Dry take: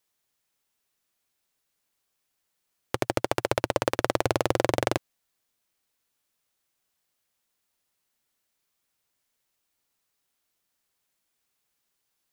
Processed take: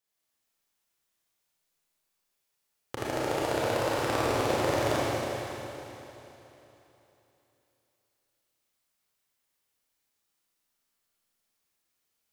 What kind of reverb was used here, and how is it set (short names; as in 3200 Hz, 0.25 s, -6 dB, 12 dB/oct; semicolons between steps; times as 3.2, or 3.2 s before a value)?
Schroeder reverb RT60 3.3 s, combs from 27 ms, DRR -8.5 dB; gain -10 dB